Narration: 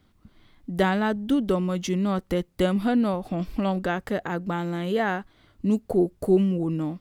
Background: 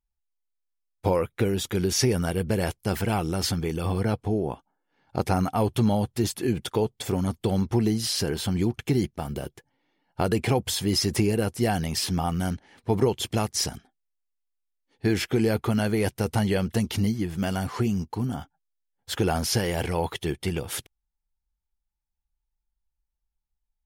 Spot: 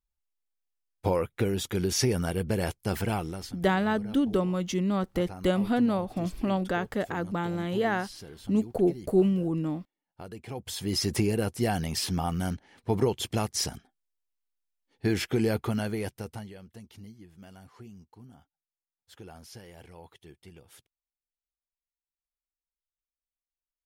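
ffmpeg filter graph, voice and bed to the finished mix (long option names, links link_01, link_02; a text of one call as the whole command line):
ffmpeg -i stem1.wav -i stem2.wav -filter_complex "[0:a]adelay=2850,volume=-2.5dB[link_01];[1:a]volume=12.5dB,afade=type=out:start_time=3.09:duration=0.41:silence=0.16788,afade=type=in:start_time=10.47:duration=0.61:silence=0.16788,afade=type=out:start_time=15.5:duration=1.03:silence=0.105925[link_02];[link_01][link_02]amix=inputs=2:normalize=0" out.wav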